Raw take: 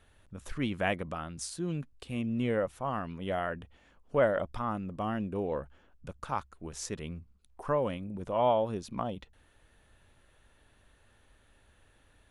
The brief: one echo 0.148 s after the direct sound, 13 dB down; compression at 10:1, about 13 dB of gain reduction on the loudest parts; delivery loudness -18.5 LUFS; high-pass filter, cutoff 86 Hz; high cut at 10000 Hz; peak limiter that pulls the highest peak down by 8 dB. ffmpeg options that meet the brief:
-af "highpass=86,lowpass=10k,acompressor=threshold=-34dB:ratio=10,alimiter=level_in=5.5dB:limit=-24dB:level=0:latency=1,volume=-5.5dB,aecho=1:1:148:0.224,volume=23dB"

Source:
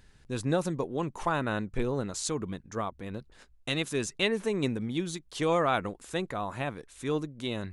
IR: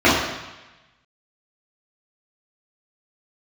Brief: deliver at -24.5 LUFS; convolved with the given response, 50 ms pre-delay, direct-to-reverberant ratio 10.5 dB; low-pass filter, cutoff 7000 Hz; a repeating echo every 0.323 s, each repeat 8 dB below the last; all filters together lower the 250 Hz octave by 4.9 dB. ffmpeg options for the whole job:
-filter_complex "[0:a]lowpass=7k,equalizer=f=250:t=o:g=-7,aecho=1:1:323|646|969|1292|1615:0.398|0.159|0.0637|0.0255|0.0102,asplit=2[a][b];[1:a]atrim=start_sample=2205,adelay=50[c];[b][c]afir=irnorm=-1:irlink=0,volume=-37dB[d];[a][d]amix=inputs=2:normalize=0,volume=8dB"

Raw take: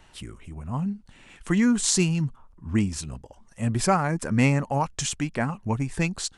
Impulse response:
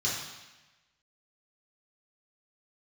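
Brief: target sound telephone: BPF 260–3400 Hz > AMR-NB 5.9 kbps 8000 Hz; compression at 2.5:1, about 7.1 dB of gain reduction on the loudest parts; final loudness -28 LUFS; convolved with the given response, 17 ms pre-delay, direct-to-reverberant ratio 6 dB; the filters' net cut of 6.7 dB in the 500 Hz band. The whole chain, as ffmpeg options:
-filter_complex "[0:a]equalizer=f=500:t=o:g=-8.5,acompressor=threshold=-29dB:ratio=2.5,asplit=2[a][b];[1:a]atrim=start_sample=2205,adelay=17[c];[b][c]afir=irnorm=-1:irlink=0,volume=-14dB[d];[a][d]amix=inputs=2:normalize=0,highpass=260,lowpass=3.4k,volume=9.5dB" -ar 8000 -c:a libopencore_amrnb -b:a 5900

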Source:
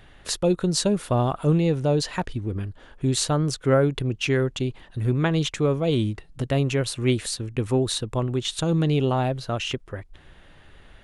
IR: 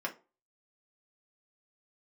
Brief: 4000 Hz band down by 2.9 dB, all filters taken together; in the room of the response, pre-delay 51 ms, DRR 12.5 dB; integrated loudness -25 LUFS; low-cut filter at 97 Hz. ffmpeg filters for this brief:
-filter_complex "[0:a]highpass=97,equalizer=f=4k:t=o:g=-3.5,asplit=2[a][b];[1:a]atrim=start_sample=2205,adelay=51[c];[b][c]afir=irnorm=-1:irlink=0,volume=-16.5dB[d];[a][d]amix=inputs=2:normalize=0,volume=-0.5dB"

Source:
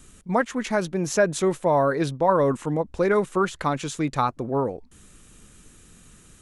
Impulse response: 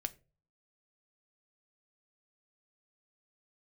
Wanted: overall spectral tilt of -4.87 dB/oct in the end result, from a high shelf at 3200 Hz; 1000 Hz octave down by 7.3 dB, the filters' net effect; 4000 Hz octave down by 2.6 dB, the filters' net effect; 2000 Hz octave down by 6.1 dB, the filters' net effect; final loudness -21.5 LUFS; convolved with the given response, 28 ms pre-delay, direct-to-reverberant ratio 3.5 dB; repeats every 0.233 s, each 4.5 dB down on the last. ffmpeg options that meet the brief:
-filter_complex "[0:a]equalizer=f=1k:t=o:g=-8.5,equalizer=f=2k:t=o:g=-5,highshelf=f=3.2k:g=5.5,equalizer=f=4k:t=o:g=-6,aecho=1:1:233|466|699|932|1165|1398|1631|1864|2097:0.596|0.357|0.214|0.129|0.0772|0.0463|0.0278|0.0167|0.01,asplit=2[a][b];[1:a]atrim=start_sample=2205,adelay=28[c];[b][c]afir=irnorm=-1:irlink=0,volume=-2.5dB[d];[a][d]amix=inputs=2:normalize=0,volume=1.5dB"

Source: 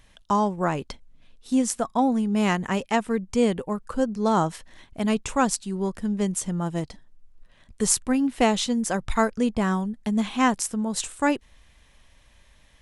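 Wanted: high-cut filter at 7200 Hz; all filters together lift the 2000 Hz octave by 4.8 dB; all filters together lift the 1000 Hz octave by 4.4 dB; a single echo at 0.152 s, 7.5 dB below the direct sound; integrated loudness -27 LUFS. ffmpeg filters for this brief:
-af "lowpass=7.2k,equalizer=f=1k:t=o:g=4.5,equalizer=f=2k:t=o:g=4.5,aecho=1:1:152:0.422,volume=-4dB"

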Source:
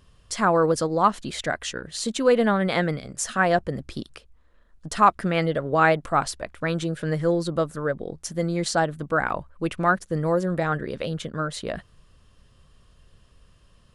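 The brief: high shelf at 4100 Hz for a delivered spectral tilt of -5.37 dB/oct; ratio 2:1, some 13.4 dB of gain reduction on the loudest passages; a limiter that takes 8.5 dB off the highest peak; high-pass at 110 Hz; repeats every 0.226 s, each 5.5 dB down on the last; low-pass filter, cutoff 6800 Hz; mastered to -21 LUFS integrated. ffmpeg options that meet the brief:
-af "highpass=110,lowpass=6.8k,highshelf=f=4.1k:g=-8,acompressor=threshold=-39dB:ratio=2,alimiter=level_in=3dB:limit=-24dB:level=0:latency=1,volume=-3dB,aecho=1:1:226|452|678|904|1130|1356|1582:0.531|0.281|0.149|0.079|0.0419|0.0222|0.0118,volume=15.5dB"

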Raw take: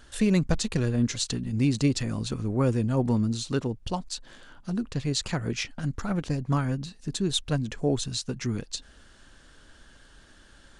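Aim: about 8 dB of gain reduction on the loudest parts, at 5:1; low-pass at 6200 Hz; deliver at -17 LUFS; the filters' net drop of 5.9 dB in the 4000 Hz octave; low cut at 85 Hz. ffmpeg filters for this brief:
-af "highpass=85,lowpass=6.2k,equalizer=f=4k:t=o:g=-6,acompressor=threshold=-28dB:ratio=5,volume=17dB"

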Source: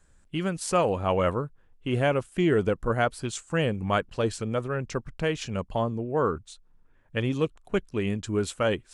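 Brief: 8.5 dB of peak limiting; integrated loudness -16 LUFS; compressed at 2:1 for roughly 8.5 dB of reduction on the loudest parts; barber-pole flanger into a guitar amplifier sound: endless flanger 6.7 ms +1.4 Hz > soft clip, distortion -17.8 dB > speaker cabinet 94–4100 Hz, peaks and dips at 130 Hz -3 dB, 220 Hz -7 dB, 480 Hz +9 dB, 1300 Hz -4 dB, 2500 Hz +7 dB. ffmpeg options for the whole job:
-filter_complex "[0:a]acompressor=threshold=-35dB:ratio=2,alimiter=level_in=3.5dB:limit=-24dB:level=0:latency=1,volume=-3.5dB,asplit=2[a][b];[b]adelay=6.7,afreqshift=1.4[c];[a][c]amix=inputs=2:normalize=1,asoftclip=threshold=-31.5dB,highpass=94,equalizer=f=130:t=q:w=4:g=-3,equalizer=f=220:t=q:w=4:g=-7,equalizer=f=480:t=q:w=4:g=9,equalizer=f=1.3k:t=q:w=4:g=-4,equalizer=f=2.5k:t=q:w=4:g=7,lowpass=f=4.1k:w=0.5412,lowpass=f=4.1k:w=1.3066,volume=24.5dB"

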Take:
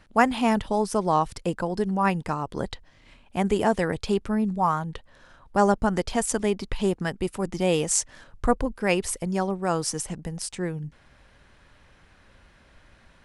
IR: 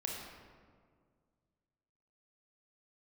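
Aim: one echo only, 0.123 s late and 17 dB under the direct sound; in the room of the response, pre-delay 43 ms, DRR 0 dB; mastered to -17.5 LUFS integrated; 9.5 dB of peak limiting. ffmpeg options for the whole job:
-filter_complex "[0:a]alimiter=limit=-14dB:level=0:latency=1,aecho=1:1:123:0.141,asplit=2[a][b];[1:a]atrim=start_sample=2205,adelay=43[c];[b][c]afir=irnorm=-1:irlink=0,volume=-1.5dB[d];[a][d]amix=inputs=2:normalize=0,volume=7dB"

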